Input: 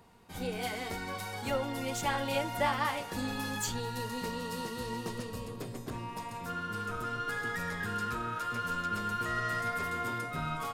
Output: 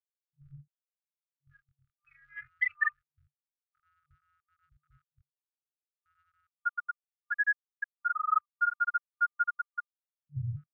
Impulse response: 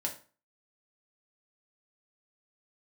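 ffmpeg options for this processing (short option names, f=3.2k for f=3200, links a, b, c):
-filter_complex "[0:a]asettb=1/sr,asplit=3[a][b][c];[a]atrim=end=2.034[d];[b]atrim=start=2.03:end=3.1,asetpts=PTS-STARTPTS,afade=t=in:d=0.004:c=qsin,afade=t=out:st=1.066:d=0.004:c=qsin,adynamicequalizer=threshold=0.00562:dfrequency=600:dqfactor=1.9:tfrequency=600:tqfactor=1.9:attack=5:release=100:ratio=0.375:range=2.5:mode=boostabove:tftype=bell[e];[c]atrim=start=3.096[f];[d][e]acrossfade=d=0.004:c1=hsin:c2=qsin[g];[g][f]acrossfade=d=0.004:c1=qsin:c2=hsin[h];[1:a]atrim=start_sample=2205,atrim=end_sample=4410[i];[h][i]afir=irnorm=-1:irlink=0,acompressor=mode=upward:threshold=-29dB:ratio=2.5,afftfilt=real='re*gte(hypot(re,im),0.224)':imag='im*gte(hypot(re,im),0.224)':win_size=1024:overlap=0.75,acontrast=41,afftfilt=real='re*(1-between(b*sr/4096,140,1200))':imag='im*(1-between(b*sr/4096,140,1200))':win_size=4096:overlap=0.75,volume=7dB"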